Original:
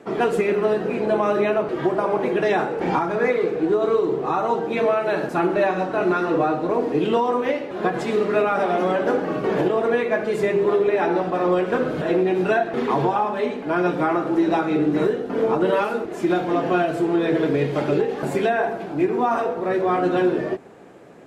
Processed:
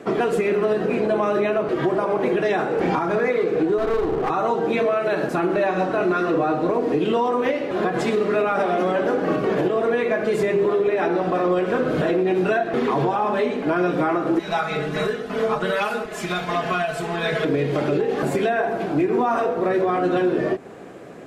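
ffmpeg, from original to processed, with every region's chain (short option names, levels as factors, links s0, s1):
-filter_complex "[0:a]asettb=1/sr,asplit=3[s0][s1][s2];[s0]atrim=end=3.784[s3];[s1]atrim=start=3.78:end=4.3,asetpts=PTS-STARTPTS,afade=t=in:d=0.004:c=qsin,afade=t=out:st=0.516:d=0.004:c=qsin,lowpass=3800,equalizer=f=810:t=o:w=0.26:g=7,aeval=exprs='clip(val(0),-1,0.0562)':c=same[s4];[s2]atrim=start=4.296[s5];[s3][s4]acrossfade=d=0.004:c1=hsin:c2=qsin[s6];[s6][s5]acrossfade=d=0.004:c1=qsin:c2=hsin,asettb=1/sr,asplit=3[s7][s8][s9];[s7]atrim=end=14.394[s10];[s8]atrim=start=14.39:end=17.45,asetpts=PTS-STARTPTS,afade=t=in:d=0.004:c=qsin,afade=t=out:st=3.056:d=0.004:c=qsin,equalizer=f=320:t=o:w=1.9:g=-15,aecho=1:1:4.7:0.78,atrim=end_sample=134946[s11];[s9]atrim=start=17.446[s12];[s10][s11]acrossfade=d=0.004:c1=hsin:c2=qsin[s13];[s13][s12]acrossfade=d=0.004:c1=qsin:c2=hsin,bandreject=f=880:w=12,alimiter=limit=0.119:level=0:latency=1:release=184,volume=2"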